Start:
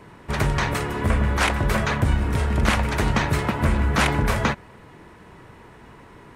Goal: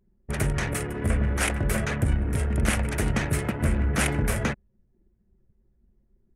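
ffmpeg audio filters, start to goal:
ffmpeg -i in.wav -af "equalizer=frequency=1000:width_type=o:width=0.67:gain=-10,equalizer=frequency=4000:width_type=o:width=0.67:gain=-7,equalizer=frequency=10000:width_type=o:width=0.67:gain=11,anlmdn=25.1,volume=-3dB" out.wav

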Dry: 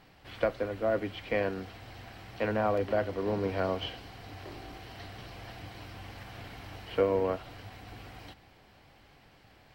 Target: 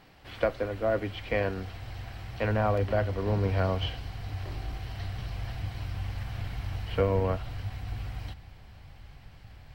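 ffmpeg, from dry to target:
ffmpeg -i in.wav -af "asubboost=boost=6.5:cutoff=120,volume=2dB" out.wav

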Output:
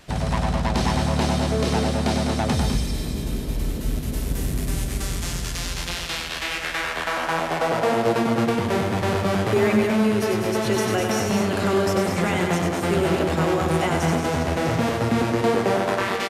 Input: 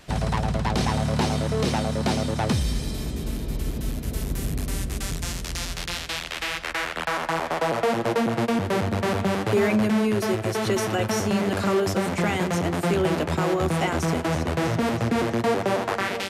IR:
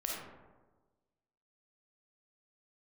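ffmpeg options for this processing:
-af "aecho=1:1:96.21|201.2|233.2:0.562|0.447|0.355"

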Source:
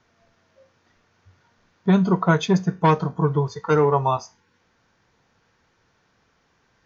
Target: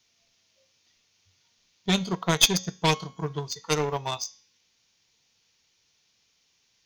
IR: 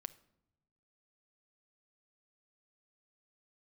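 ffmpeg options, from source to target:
-filter_complex "[0:a]aexciter=amount=6.1:drive=7.7:freq=2300,aeval=exprs='1.12*(cos(1*acos(clip(val(0)/1.12,-1,1)))-cos(1*PI/2))+0.398*(cos(2*acos(clip(val(0)/1.12,-1,1)))-cos(2*PI/2))+0.112*(cos(7*acos(clip(val(0)/1.12,-1,1)))-cos(7*PI/2))+0.0316*(cos(8*acos(clip(val(0)/1.12,-1,1)))-cos(8*PI/2))':channel_layout=same,asplit=2[link_01][link_02];[link_02]asoftclip=type=tanh:threshold=-6dB,volume=-9.5dB[link_03];[link_01][link_03]amix=inputs=2:normalize=0,bandreject=frequency=273:width_type=h:width=4,bandreject=frequency=546:width_type=h:width=4,bandreject=frequency=819:width_type=h:width=4,bandreject=frequency=1092:width_type=h:width=4,bandreject=frequency=1365:width_type=h:width=4,bandreject=frequency=1638:width_type=h:width=4,bandreject=frequency=1911:width_type=h:width=4,bandreject=frequency=2184:width_type=h:width=4,bandreject=frequency=2457:width_type=h:width=4,bandreject=frequency=2730:width_type=h:width=4,bandreject=frequency=3003:width_type=h:width=4,bandreject=frequency=3276:width_type=h:width=4,bandreject=frequency=3549:width_type=h:width=4,bandreject=frequency=3822:width_type=h:width=4,bandreject=frequency=4095:width_type=h:width=4,bandreject=frequency=4368:width_type=h:width=4,bandreject=frequency=4641:width_type=h:width=4,bandreject=frequency=4914:width_type=h:width=4,bandreject=frequency=5187:width_type=h:width=4,bandreject=frequency=5460:width_type=h:width=4,bandreject=frequency=5733:width_type=h:width=4,bandreject=frequency=6006:width_type=h:width=4,bandreject=frequency=6279:width_type=h:width=4,bandreject=frequency=6552:width_type=h:width=4,bandreject=frequency=6825:width_type=h:width=4,bandreject=frequency=7098:width_type=h:width=4,bandreject=frequency=7371:width_type=h:width=4,volume=-7dB"

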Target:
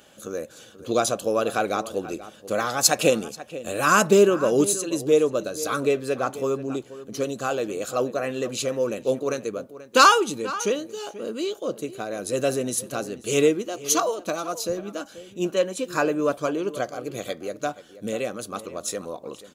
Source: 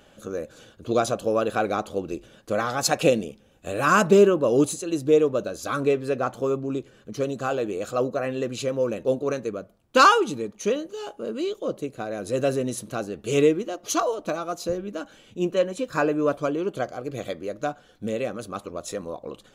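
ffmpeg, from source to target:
ffmpeg -i in.wav -filter_complex "[0:a]highpass=frequency=140:poles=1,highshelf=frequency=4600:gain=10,asplit=2[link_01][link_02];[link_02]adelay=484,volume=-15dB,highshelf=frequency=4000:gain=-10.9[link_03];[link_01][link_03]amix=inputs=2:normalize=0" out.wav

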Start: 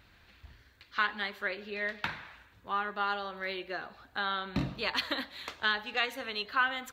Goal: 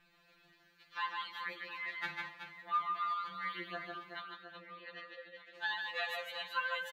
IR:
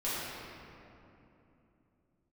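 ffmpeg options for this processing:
-filter_complex "[0:a]asplit=3[link_01][link_02][link_03];[link_01]afade=type=out:start_time=4.2:duration=0.02[link_04];[link_02]asplit=3[link_05][link_06][link_07];[link_05]bandpass=frequency=530:width_type=q:width=8,volume=0dB[link_08];[link_06]bandpass=frequency=1840:width_type=q:width=8,volume=-6dB[link_09];[link_07]bandpass=frequency=2480:width_type=q:width=8,volume=-9dB[link_10];[link_08][link_09][link_10]amix=inputs=3:normalize=0,afade=type=in:start_time=4.2:duration=0.02,afade=type=out:start_time=5.54:duration=0.02[link_11];[link_03]afade=type=in:start_time=5.54:duration=0.02[link_12];[link_04][link_11][link_12]amix=inputs=3:normalize=0,asplit=2[link_13][link_14];[link_14]aecho=0:1:150|375|712.5|1219|1978:0.631|0.398|0.251|0.158|0.1[link_15];[link_13][link_15]amix=inputs=2:normalize=0,afftfilt=real='re*2.83*eq(mod(b,8),0)':imag='im*2.83*eq(mod(b,8),0)':win_size=2048:overlap=0.75,volume=-5dB"

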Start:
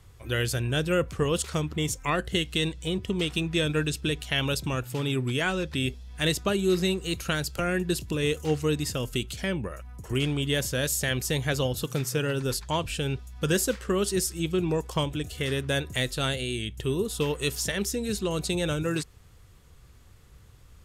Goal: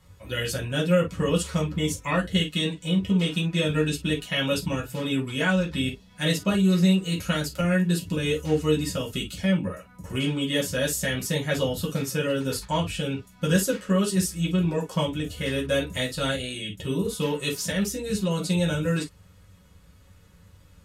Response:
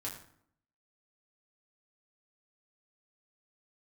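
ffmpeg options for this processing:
-filter_complex "[1:a]atrim=start_sample=2205,afade=type=out:start_time=0.17:duration=0.01,atrim=end_sample=7938,asetrate=83790,aresample=44100[link_01];[0:a][link_01]afir=irnorm=-1:irlink=0,volume=6.5dB"

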